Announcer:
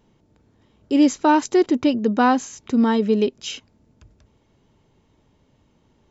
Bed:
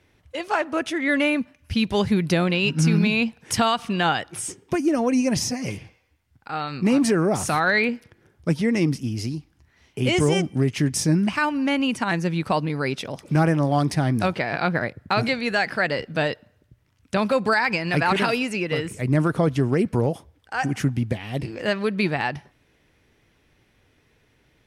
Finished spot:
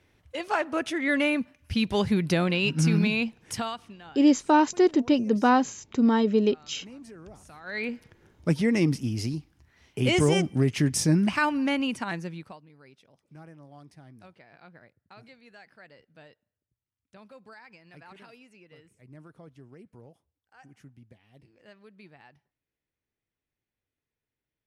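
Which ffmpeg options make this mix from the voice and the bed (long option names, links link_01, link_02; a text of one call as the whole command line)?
ffmpeg -i stem1.wav -i stem2.wav -filter_complex "[0:a]adelay=3250,volume=-3.5dB[link_01];[1:a]volume=21dB,afade=type=out:start_time=3.02:duration=0.97:silence=0.0707946,afade=type=in:start_time=7.63:duration=0.55:silence=0.0595662,afade=type=out:start_time=11.5:duration=1.08:silence=0.0446684[link_02];[link_01][link_02]amix=inputs=2:normalize=0" out.wav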